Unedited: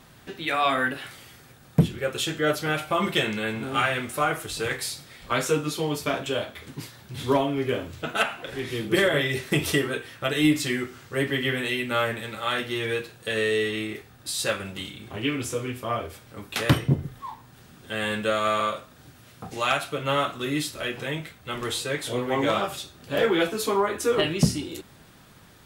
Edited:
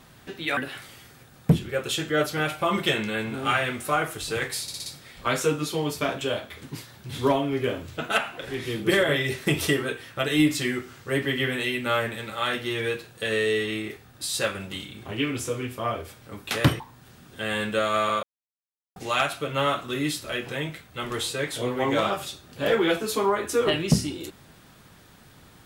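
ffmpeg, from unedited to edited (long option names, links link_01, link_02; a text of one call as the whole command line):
ffmpeg -i in.wav -filter_complex "[0:a]asplit=9[link_01][link_02][link_03][link_04][link_05][link_06][link_07][link_08][link_09];[link_01]atrim=end=0.572[link_10];[link_02]atrim=start=0.858:end=4.972[link_11];[link_03]atrim=start=4.908:end=4.972[link_12];[link_04]atrim=start=4.908:end=4.972[link_13];[link_05]atrim=start=4.908:end=4.972[link_14];[link_06]atrim=start=4.908:end=16.852[link_15];[link_07]atrim=start=17.308:end=18.74,asetpts=PTS-STARTPTS,afade=type=out:start_time=1.428:duration=0.004:curve=hsin[link_16];[link_08]atrim=start=18.74:end=19.47,asetpts=PTS-STARTPTS,volume=0[link_17];[link_09]atrim=start=19.47,asetpts=PTS-STARTPTS,afade=type=in:duration=0.004:curve=hsin[link_18];[link_10][link_11]acrossfade=duration=0.004:curve1=hsin:curve2=hsin[link_19];[link_19][link_12]acrossfade=duration=0.004:curve1=hsin:curve2=hsin[link_20];[link_20][link_13]acrossfade=duration=0.004:curve1=hsin:curve2=hsin[link_21];[link_21][link_14]acrossfade=duration=0.004:curve1=hsin:curve2=hsin[link_22];[link_22][link_15]acrossfade=duration=0.004:curve1=hsin:curve2=hsin[link_23];[link_16][link_17][link_18]concat=n=3:v=0:a=1[link_24];[link_23][link_24]acrossfade=duration=0.004:curve1=hsin:curve2=hsin" out.wav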